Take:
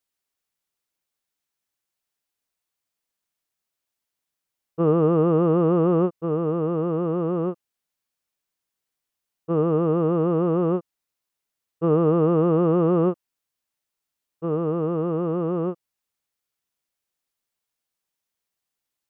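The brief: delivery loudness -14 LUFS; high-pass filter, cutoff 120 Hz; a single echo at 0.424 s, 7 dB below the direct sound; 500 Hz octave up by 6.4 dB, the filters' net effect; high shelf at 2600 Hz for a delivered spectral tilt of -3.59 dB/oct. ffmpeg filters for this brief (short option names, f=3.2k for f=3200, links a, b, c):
-af "highpass=120,equalizer=f=500:t=o:g=7,highshelf=f=2.6k:g=7.5,aecho=1:1:424:0.447,volume=3.5dB"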